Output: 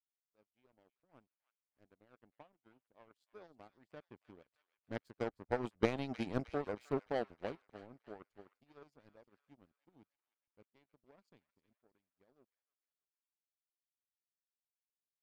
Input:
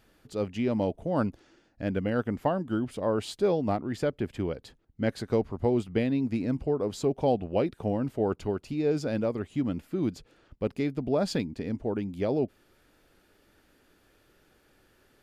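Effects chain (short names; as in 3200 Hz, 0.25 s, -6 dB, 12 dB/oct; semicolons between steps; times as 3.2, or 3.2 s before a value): Doppler pass-by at 6.2, 8 m/s, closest 5.2 m; power-law curve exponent 2; harmonic-percussive split harmonic -11 dB; on a send: thin delay 0.31 s, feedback 51%, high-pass 1700 Hz, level -13 dB; on the sum: gain +2.5 dB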